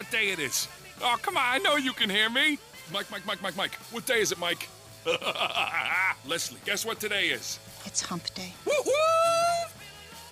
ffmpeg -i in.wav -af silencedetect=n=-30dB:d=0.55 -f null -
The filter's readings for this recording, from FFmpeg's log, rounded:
silence_start: 9.66
silence_end: 10.31 | silence_duration: 0.66